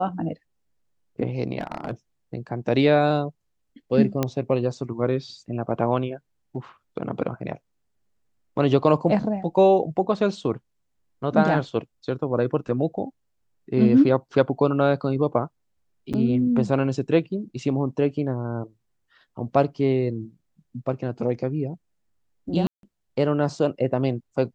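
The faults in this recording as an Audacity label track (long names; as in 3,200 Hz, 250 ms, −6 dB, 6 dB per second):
1.610000	1.910000	clipping −22 dBFS
4.230000	4.230000	click −9 dBFS
16.130000	16.140000	drop-out 7 ms
22.670000	22.830000	drop-out 162 ms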